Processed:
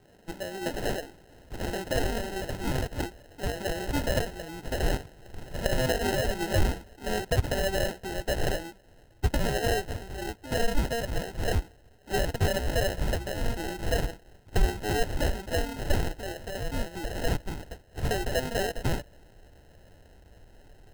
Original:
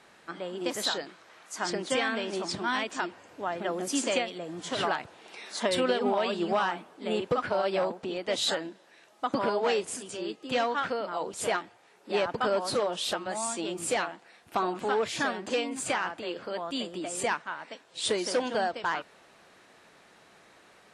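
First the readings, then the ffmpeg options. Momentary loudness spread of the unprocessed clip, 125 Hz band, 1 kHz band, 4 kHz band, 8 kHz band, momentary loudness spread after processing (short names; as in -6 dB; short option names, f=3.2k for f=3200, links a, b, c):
9 LU, +15.5 dB, -4.5 dB, -3.0 dB, -2.5 dB, 10 LU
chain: -af "acrusher=samples=38:mix=1:aa=0.000001,asubboost=boost=5:cutoff=95"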